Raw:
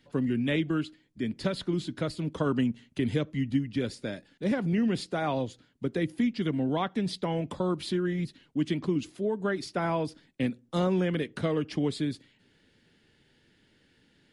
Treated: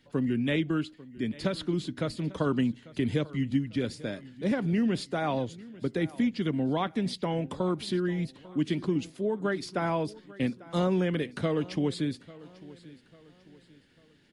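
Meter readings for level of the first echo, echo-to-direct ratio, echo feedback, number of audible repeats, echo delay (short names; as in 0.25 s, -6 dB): -20.0 dB, -19.5 dB, 40%, 2, 0.845 s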